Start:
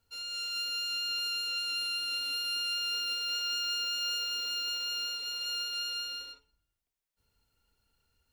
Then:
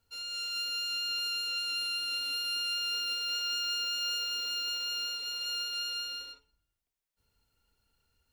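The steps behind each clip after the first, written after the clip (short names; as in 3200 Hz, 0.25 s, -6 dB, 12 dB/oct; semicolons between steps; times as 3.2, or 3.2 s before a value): nothing audible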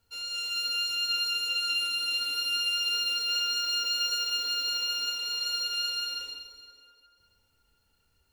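plate-style reverb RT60 3 s, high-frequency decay 0.7×, DRR 6 dB; gain +3 dB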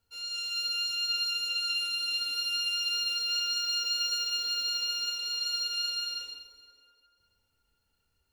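dynamic EQ 5000 Hz, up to +6 dB, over -42 dBFS, Q 0.93; gain -5.5 dB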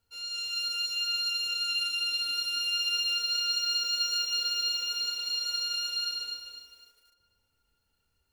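lo-fi delay 0.254 s, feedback 35%, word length 10-bit, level -7 dB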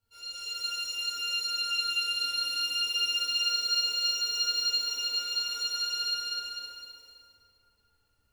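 plate-style reverb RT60 2.8 s, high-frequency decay 0.65×, DRR -10 dB; gain -8 dB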